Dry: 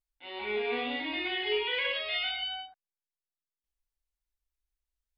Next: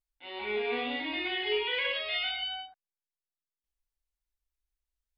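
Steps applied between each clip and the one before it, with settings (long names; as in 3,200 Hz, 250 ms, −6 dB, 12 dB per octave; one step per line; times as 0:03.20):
no processing that can be heard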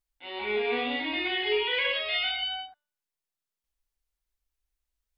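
hum removal 295.6 Hz, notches 33
level +3.5 dB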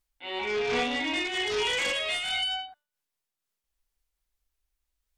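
sine wavefolder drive 8 dB, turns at −16 dBFS
amplitude modulation by smooth noise, depth 60%
level −5.5 dB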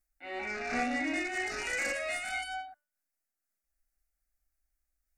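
phaser with its sweep stopped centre 660 Hz, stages 8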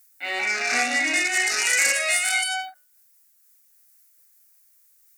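spectral tilt +4.5 dB per octave
in parallel at +2 dB: downward compressor, threshold −38 dBFS, peak gain reduction 14 dB
on the sum: every ending faded ahead of time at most 290 dB per second
level +5 dB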